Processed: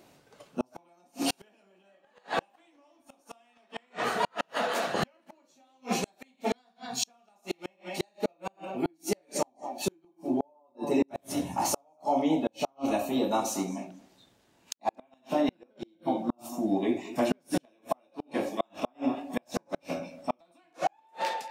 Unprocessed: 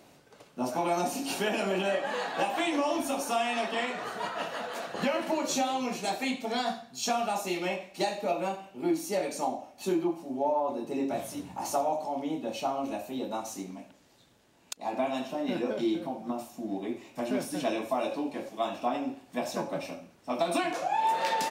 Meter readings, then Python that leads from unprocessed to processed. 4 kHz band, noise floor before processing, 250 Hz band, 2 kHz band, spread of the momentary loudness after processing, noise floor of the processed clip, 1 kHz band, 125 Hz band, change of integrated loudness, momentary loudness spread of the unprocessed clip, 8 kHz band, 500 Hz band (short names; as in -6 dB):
-2.5 dB, -60 dBFS, +0.5 dB, -3.5 dB, 12 LU, -68 dBFS, -3.0 dB, +1.5 dB, -1.0 dB, 8 LU, +0.5 dB, -2.0 dB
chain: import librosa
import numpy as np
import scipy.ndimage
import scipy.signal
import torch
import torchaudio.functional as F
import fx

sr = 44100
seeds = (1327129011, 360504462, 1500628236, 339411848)

y = fx.fade_out_tail(x, sr, length_s=0.66)
y = fx.echo_tape(y, sr, ms=226, feedback_pct=36, wet_db=-14.5, lp_hz=5700.0, drive_db=16.0, wow_cents=21)
y = fx.noise_reduce_blind(y, sr, reduce_db=9)
y = fx.gate_flip(y, sr, shuts_db=-22.0, range_db=-41)
y = y * librosa.db_to_amplitude(7.0)